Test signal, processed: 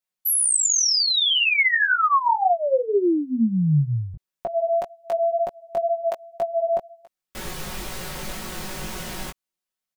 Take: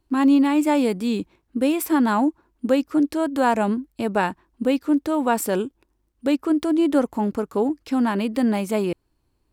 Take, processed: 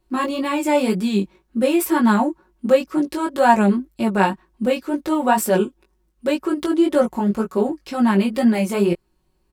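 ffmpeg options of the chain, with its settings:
-af "aecho=1:1:5.4:0.78,flanger=delay=17:depth=3.8:speed=2,volume=4.5dB"

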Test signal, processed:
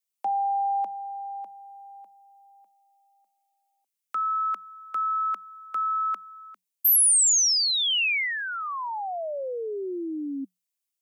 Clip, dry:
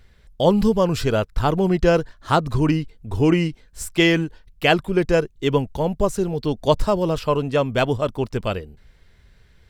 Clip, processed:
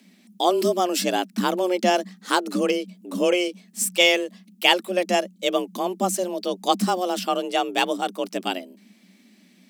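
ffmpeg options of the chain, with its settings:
-af "afreqshift=180,aexciter=amount=3.4:drive=1.4:freq=2.2k,volume=-4dB"

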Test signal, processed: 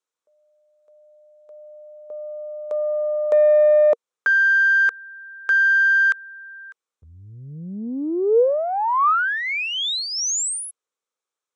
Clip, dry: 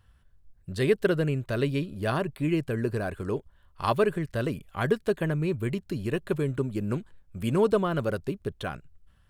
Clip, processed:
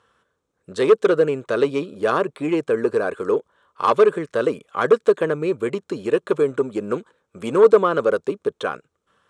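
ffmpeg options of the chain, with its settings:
-af "aeval=exprs='0.299*(cos(1*acos(clip(val(0)/0.299,-1,1)))-cos(1*PI/2))+0.00422*(cos(8*acos(clip(val(0)/0.299,-1,1)))-cos(8*PI/2))':c=same,aeval=exprs='0.299*sin(PI/2*1.78*val(0)/0.299)':c=same,highpass=340,equalizer=f=470:t=q:w=4:g=9,equalizer=f=700:t=q:w=4:g=-4,equalizer=f=1.2k:t=q:w=4:g=6,equalizer=f=1.9k:t=q:w=4:g=-5,equalizer=f=2.8k:t=q:w=4:g=-5,equalizer=f=4.7k:t=q:w=4:g=-8,lowpass=f=8.1k:w=0.5412,lowpass=f=8.1k:w=1.3066"

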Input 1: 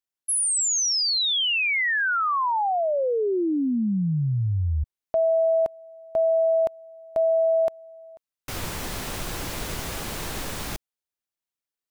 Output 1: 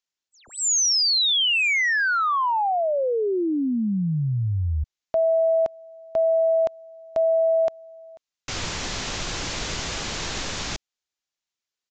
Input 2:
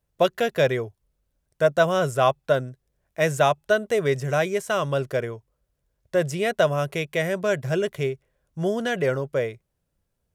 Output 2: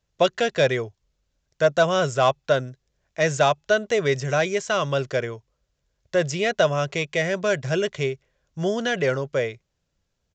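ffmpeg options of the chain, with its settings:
-filter_complex "[0:a]equalizer=f=5.4k:w=0.33:g=7.5,acrossover=split=880[a][b];[b]asoftclip=type=tanh:threshold=-18dB[c];[a][c]amix=inputs=2:normalize=0,aresample=16000,aresample=44100"

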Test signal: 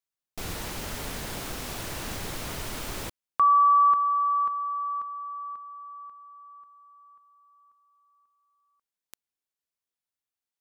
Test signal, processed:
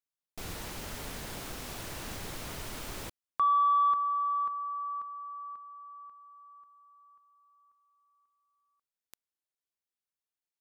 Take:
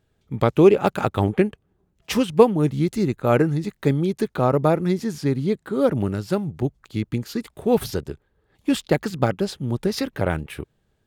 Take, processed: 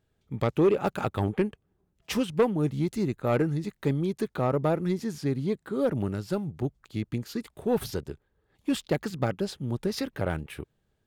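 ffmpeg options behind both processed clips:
-af "asoftclip=type=tanh:threshold=-9.5dB,volume=-5.5dB"

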